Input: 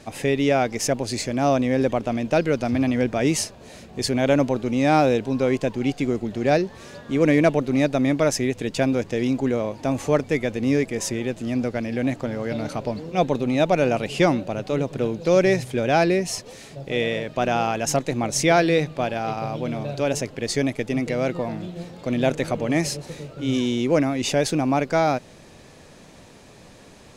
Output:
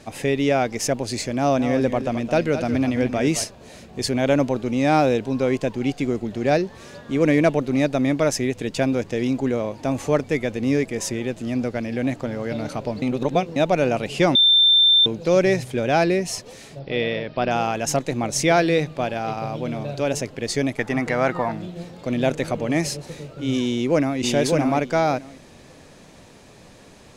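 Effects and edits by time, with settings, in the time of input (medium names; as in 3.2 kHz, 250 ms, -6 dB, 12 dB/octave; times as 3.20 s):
1.36–3.44 s: delay 217 ms -10 dB
13.02–13.56 s: reverse
14.35–15.06 s: bleep 3.57 kHz -11.5 dBFS
16.79–17.51 s: careless resampling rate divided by 4×, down none, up filtered
20.78–21.52 s: high-order bell 1.2 kHz +10.5 dB
23.64–24.19 s: echo throw 590 ms, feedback 15%, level -2.5 dB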